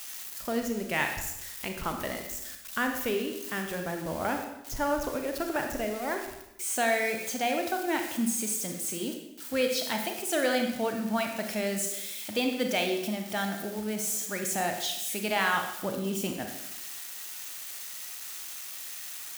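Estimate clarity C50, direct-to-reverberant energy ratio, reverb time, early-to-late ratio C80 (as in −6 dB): 5.5 dB, 3.5 dB, 0.90 s, 7.5 dB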